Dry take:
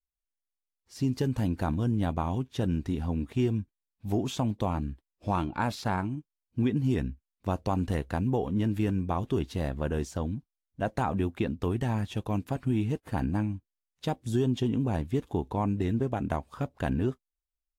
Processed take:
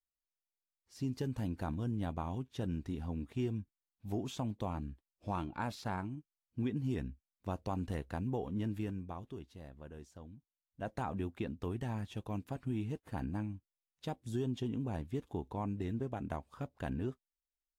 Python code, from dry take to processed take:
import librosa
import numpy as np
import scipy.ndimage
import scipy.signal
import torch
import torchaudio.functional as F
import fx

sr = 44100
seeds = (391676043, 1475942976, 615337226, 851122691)

y = fx.gain(x, sr, db=fx.line((8.71, -9.0), (9.52, -20.0), (10.37, -20.0), (10.9, -9.5)))